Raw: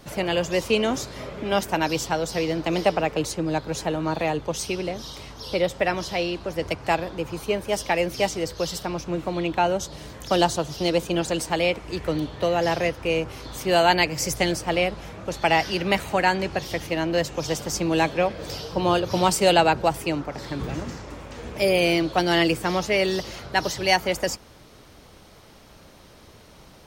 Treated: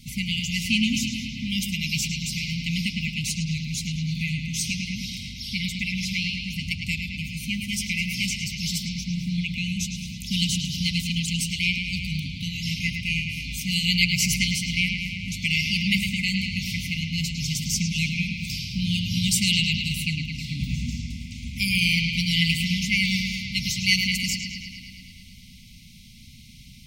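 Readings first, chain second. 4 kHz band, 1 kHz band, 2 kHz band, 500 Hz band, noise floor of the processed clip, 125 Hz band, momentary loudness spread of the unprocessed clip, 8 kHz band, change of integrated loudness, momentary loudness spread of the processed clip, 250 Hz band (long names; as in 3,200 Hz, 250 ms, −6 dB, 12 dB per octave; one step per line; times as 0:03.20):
+4.5 dB, below −40 dB, +1.5 dB, below −40 dB, −46 dBFS, +4.5 dB, 10 LU, +3.5 dB, −1.0 dB, 9 LU, −0.5 dB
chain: linear-phase brick-wall band-stop 260–2,000 Hz
bucket-brigade delay 107 ms, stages 4,096, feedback 73%, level −6.5 dB
level +3 dB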